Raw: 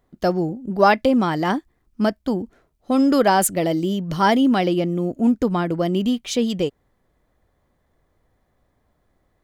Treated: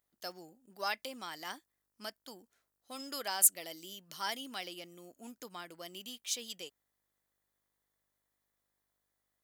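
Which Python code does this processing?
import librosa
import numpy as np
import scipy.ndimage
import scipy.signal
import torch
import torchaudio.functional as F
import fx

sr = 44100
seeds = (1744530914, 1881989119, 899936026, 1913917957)

y = fx.dmg_buzz(x, sr, base_hz=50.0, harmonics=39, level_db=-51.0, tilt_db=-9, odd_only=False)
y = np.diff(y, prepend=0.0)
y = y * 10.0 ** (-4.0 / 20.0)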